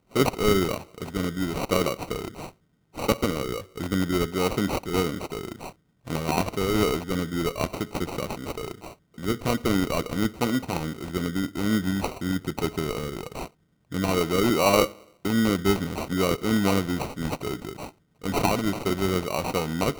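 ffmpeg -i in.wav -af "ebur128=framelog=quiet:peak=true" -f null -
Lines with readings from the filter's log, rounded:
Integrated loudness:
  I:         -26.5 LUFS
  Threshold: -36.9 LUFS
Loudness range:
  LRA:         4.5 LU
  Threshold: -47.0 LUFS
  LRA low:   -28.6 LUFS
  LRA high:  -24.1 LUFS
True peak:
  Peak:       -6.4 dBFS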